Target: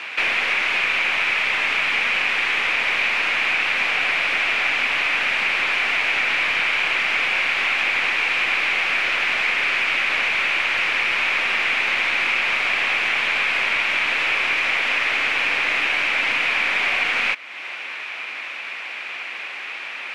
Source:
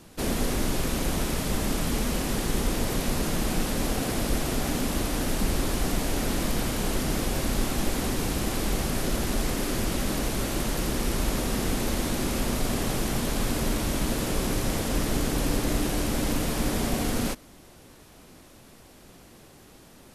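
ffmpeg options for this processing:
-af "highpass=1.2k,aeval=exprs='clip(val(0),-1,0.0158)':c=same,lowpass=f=2.4k:t=q:w=5.1,acompressor=threshold=-49dB:ratio=2,alimiter=level_in=28.5dB:limit=-1dB:release=50:level=0:latency=1,volume=-6dB"

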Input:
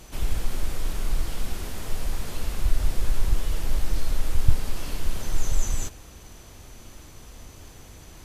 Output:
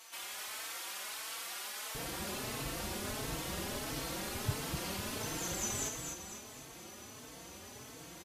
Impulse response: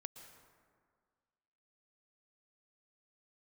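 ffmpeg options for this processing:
-filter_complex "[0:a]asetnsamples=n=441:p=0,asendcmd='1.95 highpass f 170',highpass=1k,aecho=1:1:250|500|750|1000|1250:0.562|0.247|0.109|0.0479|0.0211,asplit=2[a][b];[b]adelay=4,afreqshift=1.5[c];[a][c]amix=inputs=2:normalize=1,volume=1dB"

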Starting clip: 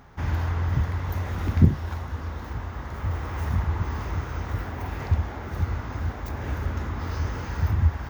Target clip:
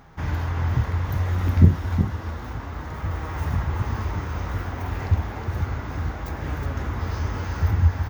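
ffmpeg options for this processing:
-filter_complex "[0:a]asplit=2[a][b];[b]aecho=0:1:366:0.473[c];[a][c]amix=inputs=2:normalize=0,flanger=delay=6.2:depth=5:regen=69:speed=0.32:shape=sinusoidal,volume=5.5dB"

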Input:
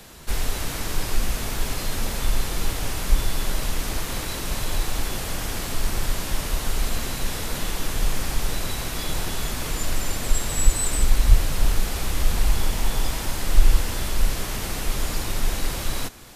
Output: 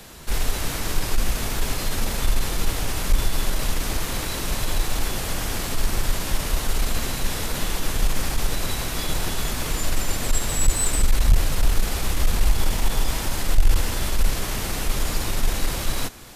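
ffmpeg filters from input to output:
-af "aeval=exprs='(tanh(3.16*val(0)+0.25)-tanh(0.25))/3.16':c=same,volume=2.5dB"

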